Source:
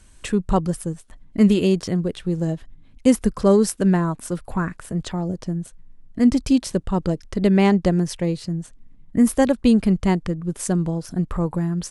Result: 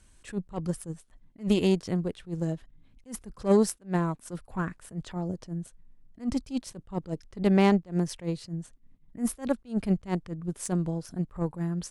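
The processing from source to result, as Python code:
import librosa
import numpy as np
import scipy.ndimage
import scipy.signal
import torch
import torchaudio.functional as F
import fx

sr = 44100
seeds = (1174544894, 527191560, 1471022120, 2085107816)

y = fx.cheby_harmonics(x, sr, harmonics=(4, 6, 7), levels_db=(-27, -44, -29), full_scale_db=-3.5)
y = fx.attack_slew(y, sr, db_per_s=250.0)
y = F.gain(torch.from_numpy(y), -5.0).numpy()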